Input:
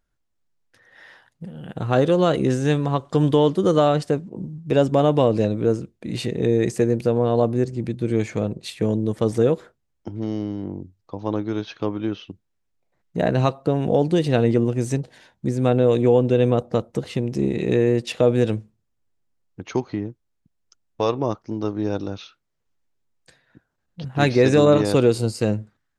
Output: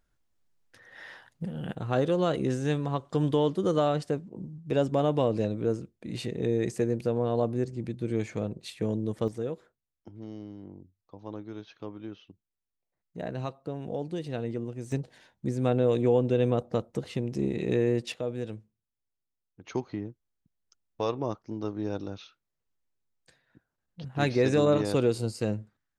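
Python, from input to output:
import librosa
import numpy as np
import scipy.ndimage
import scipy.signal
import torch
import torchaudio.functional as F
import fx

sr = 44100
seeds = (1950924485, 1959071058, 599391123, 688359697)

y = fx.gain(x, sr, db=fx.steps((0.0, 1.0), (1.75, -8.0), (9.28, -15.0), (14.92, -7.0), (18.14, -15.5), (19.64, -8.0)))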